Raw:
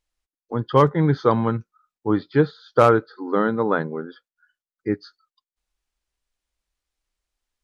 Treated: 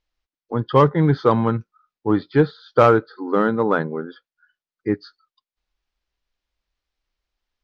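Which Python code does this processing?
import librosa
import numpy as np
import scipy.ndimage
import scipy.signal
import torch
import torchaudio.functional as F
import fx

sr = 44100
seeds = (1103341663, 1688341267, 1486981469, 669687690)

p1 = scipy.signal.sosfilt(scipy.signal.butter(4, 5400.0, 'lowpass', fs=sr, output='sos'), x)
p2 = np.clip(p1, -10.0 ** (-14.0 / 20.0), 10.0 ** (-14.0 / 20.0))
y = p1 + (p2 * 10.0 ** (-11.0 / 20.0))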